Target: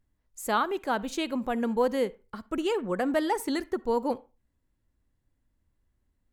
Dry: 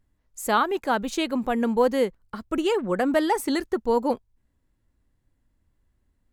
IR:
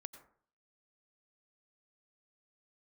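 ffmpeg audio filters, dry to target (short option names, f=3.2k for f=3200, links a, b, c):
-filter_complex "[0:a]asplit=2[a][b];[1:a]atrim=start_sample=2205,asetrate=79380,aresample=44100[c];[b][c]afir=irnorm=-1:irlink=0,volume=1dB[d];[a][d]amix=inputs=2:normalize=0,volume=-7dB"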